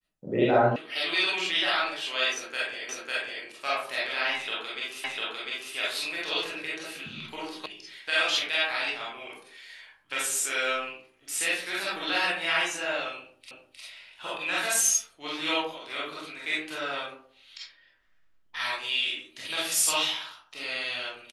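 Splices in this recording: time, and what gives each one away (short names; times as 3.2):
0.76 sound cut off
2.89 repeat of the last 0.55 s
5.04 repeat of the last 0.7 s
7.66 sound cut off
13.51 repeat of the last 0.31 s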